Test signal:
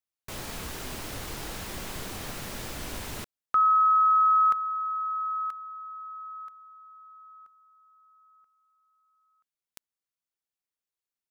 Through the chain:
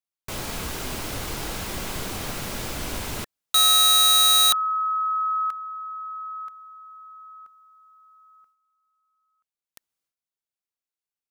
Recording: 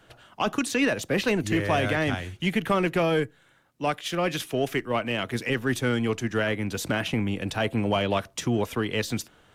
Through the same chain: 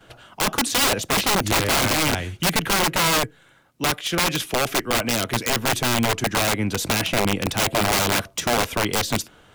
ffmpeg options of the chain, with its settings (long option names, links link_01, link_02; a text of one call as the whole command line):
ffmpeg -i in.wav -af "aeval=exprs='(mod(9.44*val(0)+1,2)-1)/9.44':channel_layout=same,agate=range=-9dB:threshold=-60dB:ratio=3:release=418:detection=rms,bandreject=frequency=1800:width=20,volume=6dB" out.wav